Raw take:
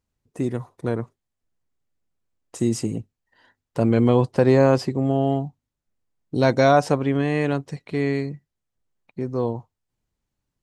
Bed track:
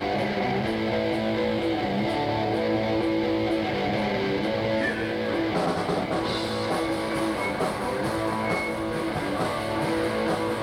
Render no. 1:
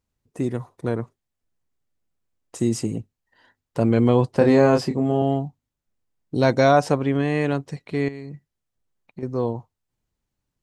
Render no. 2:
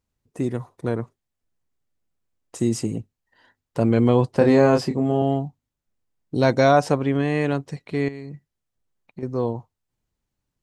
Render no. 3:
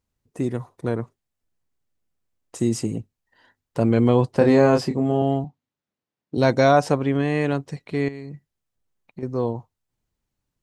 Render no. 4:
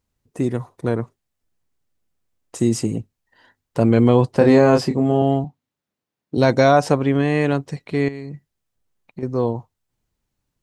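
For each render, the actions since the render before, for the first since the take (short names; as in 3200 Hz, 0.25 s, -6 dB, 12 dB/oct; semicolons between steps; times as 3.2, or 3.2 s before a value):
4.38–5.22 doubler 27 ms -4.5 dB; 8.08–9.23 compressor 12:1, threshold -30 dBFS
nothing audible
5.44–6.38 BPF 160–4900 Hz
gain +3.5 dB; limiter -3 dBFS, peak gain reduction 2 dB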